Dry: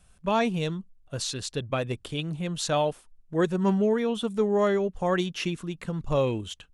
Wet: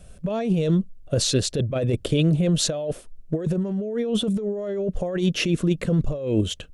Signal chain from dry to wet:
low shelf with overshoot 720 Hz +6 dB, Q 3
compressor whose output falls as the input rises −25 dBFS, ratio −1
level +2 dB

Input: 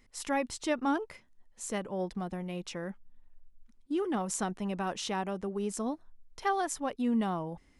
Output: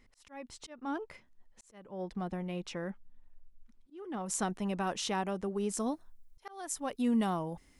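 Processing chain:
high-shelf EQ 6,600 Hz −7.5 dB, from 0:04.26 +3 dB, from 0:05.78 +12 dB
volume swells 546 ms

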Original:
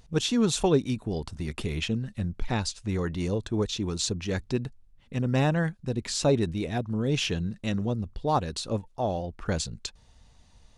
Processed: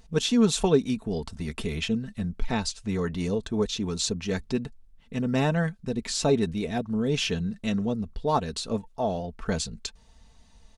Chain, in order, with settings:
comb filter 4.5 ms, depth 50%

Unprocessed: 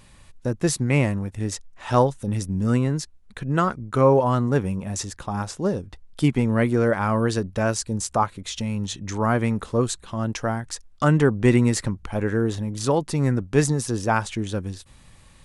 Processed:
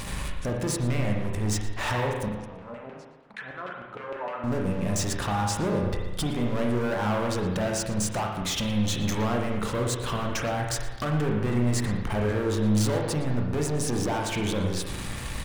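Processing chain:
dynamic equaliser 620 Hz, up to +4 dB, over −30 dBFS, Q 1.1
downward compressor 10 to 1, threshold −32 dBFS, peak gain reduction 22.5 dB
leveller curve on the samples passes 5
brickwall limiter −25.5 dBFS, peak gain reduction 8 dB
0:02.28–0:04.44: auto-filter band-pass saw down 6.5 Hz 490–2,700 Hz
slap from a distant wall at 20 metres, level −17 dB
spring reverb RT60 1.2 s, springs 33/38 ms, chirp 75 ms, DRR 0 dB

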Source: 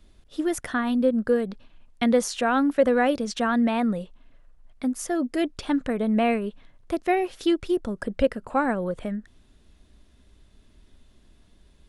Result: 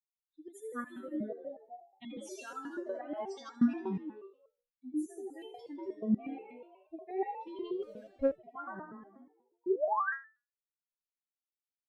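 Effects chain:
spectral dynamics exaggerated over time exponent 3
parametric band 430 Hz +8.5 dB 2.4 octaves
notch comb filter 430 Hz
echo with shifted repeats 80 ms, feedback 60%, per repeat +46 Hz, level −5 dB
0:07.82–0:08.27: leveller curve on the samples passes 1
0:09.66–0:10.13: sound drawn into the spectrogram rise 330–1,900 Hz −15 dBFS
brickwall limiter −14.5 dBFS, peak gain reduction 10 dB
step-sequenced resonator 8.3 Hz 190–440 Hz

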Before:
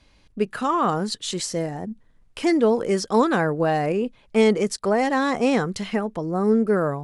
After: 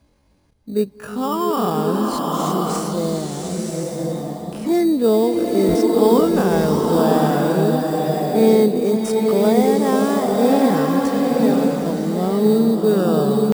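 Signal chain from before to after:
high-pass filter 79 Hz 6 dB per octave
feedback echo with a low-pass in the loop 988 ms, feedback 61%, low-pass 4,000 Hz, level −23 dB
tempo change 0.52×
parametric band 3,000 Hz −11 dB 2.6 octaves
in parallel at −6 dB: sample-rate reduction 4,200 Hz, jitter 0%
on the sum: high-shelf EQ 10,000 Hz +6 dB
buffer that repeats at 0:05.68, samples 512, times 5
slow-attack reverb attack 1,010 ms, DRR −1 dB

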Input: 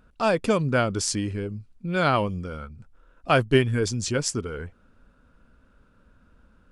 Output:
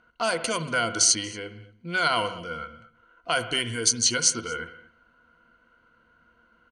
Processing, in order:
EQ curve with evenly spaced ripples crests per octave 1.9, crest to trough 13 dB
low-pass that shuts in the quiet parts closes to 2,300 Hz, open at −15 dBFS
brickwall limiter −15.5 dBFS, peak gain reduction 10 dB
spectral tilt +4 dB per octave
single-tap delay 232 ms −23.5 dB
on a send at −11 dB: convolution reverb, pre-delay 57 ms

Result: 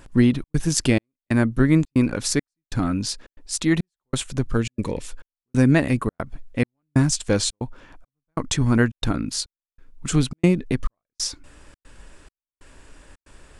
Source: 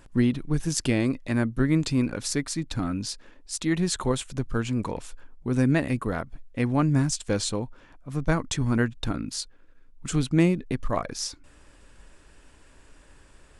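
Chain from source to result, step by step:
gate pattern "xxxx.xxxx...x" 138 BPM −60 dB
gain on a spectral selection 0:04.57–0:05.08, 590–1,700 Hz −8 dB
level +5.5 dB

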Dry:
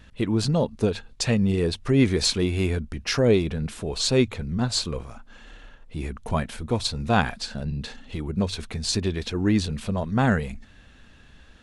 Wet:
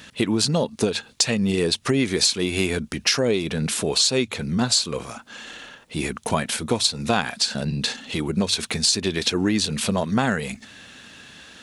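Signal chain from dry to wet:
high-pass filter 160 Hz 12 dB per octave
high-shelf EQ 2,600 Hz +10.5 dB
downward compressor 6 to 1, threshold −25 dBFS, peak gain reduction 13.5 dB
level +7.5 dB

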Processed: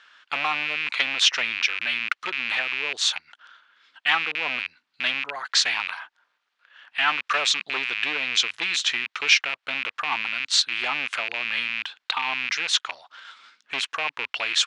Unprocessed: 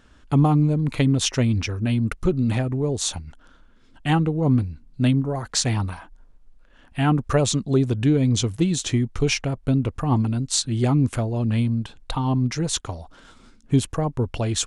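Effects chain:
loose part that buzzes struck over −26 dBFS, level −23 dBFS
gain into a clipping stage and back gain 14.5 dB
flat-topped band-pass 2,400 Hz, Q 0.77
level +9 dB

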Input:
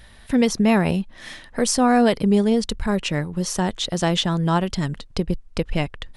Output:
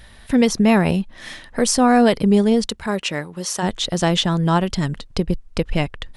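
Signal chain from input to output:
0:02.67–0:03.62: high-pass filter 240 Hz → 650 Hz 6 dB per octave
level +2.5 dB

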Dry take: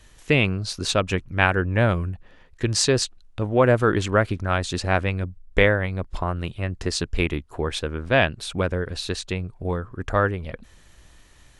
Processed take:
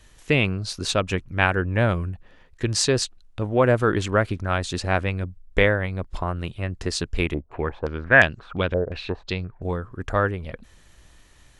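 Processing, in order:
0:07.34–0:09.72: low-pass on a step sequencer 5.7 Hz 640–6,600 Hz
level −1 dB

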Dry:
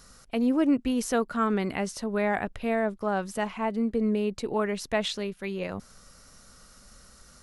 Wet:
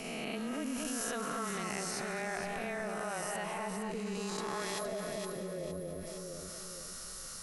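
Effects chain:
peak hold with a rise ahead of every peak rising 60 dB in 1.51 s
noise gate −36 dBFS, range −6 dB
first-order pre-emphasis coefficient 0.9
time-frequency box erased 0:04.79–0:06.07, 730–9,500 Hz
high-shelf EQ 3,100 Hz −9.5 dB
feedback echo with a high-pass in the loop 215 ms, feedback 46%, level −13 dB
frequency shifter −18 Hz
delay that swaps between a low-pass and a high-pass 232 ms, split 1,400 Hz, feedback 55%, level −3.5 dB
envelope flattener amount 70%

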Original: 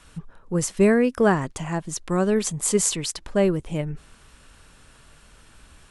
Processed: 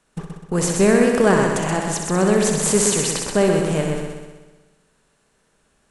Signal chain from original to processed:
compressor on every frequency bin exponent 0.6
noise gate −30 dBFS, range −29 dB
on a send: echo machine with several playback heads 63 ms, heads first and second, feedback 58%, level −7 dB

